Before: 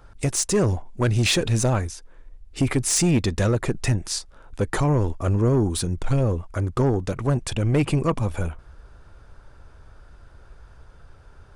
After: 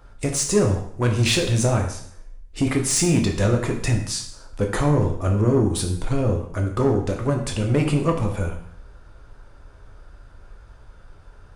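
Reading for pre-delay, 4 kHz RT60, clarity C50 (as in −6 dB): 7 ms, 0.60 s, 7.5 dB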